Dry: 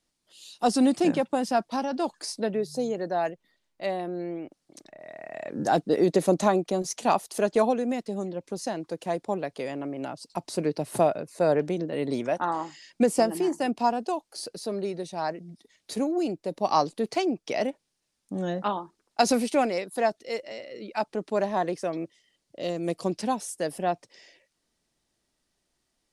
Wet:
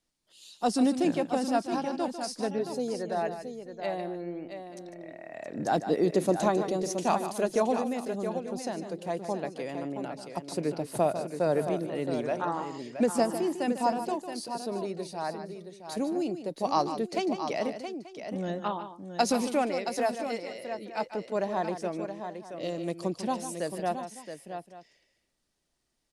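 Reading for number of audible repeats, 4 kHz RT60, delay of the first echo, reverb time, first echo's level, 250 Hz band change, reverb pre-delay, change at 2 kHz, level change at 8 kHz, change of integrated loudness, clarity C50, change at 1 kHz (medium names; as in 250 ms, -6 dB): 3, no reverb, 149 ms, no reverb, -10.5 dB, -2.5 dB, no reverb, -3.0 dB, -3.0 dB, -3.0 dB, no reverb, -3.0 dB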